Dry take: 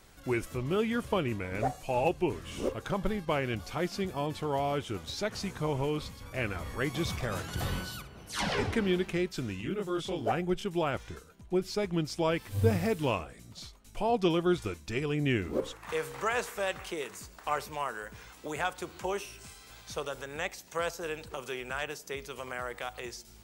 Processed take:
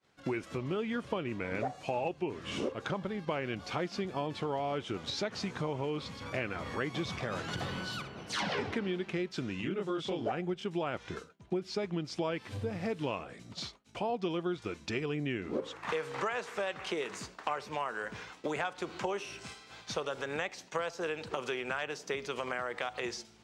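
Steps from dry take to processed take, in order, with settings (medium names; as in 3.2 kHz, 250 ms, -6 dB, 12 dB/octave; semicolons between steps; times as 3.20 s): expander -45 dBFS; compression 6:1, threshold -40 dBFS, peak gain reduction 19 dB; band-pass 140–5000 Hz; trim +8.5 dB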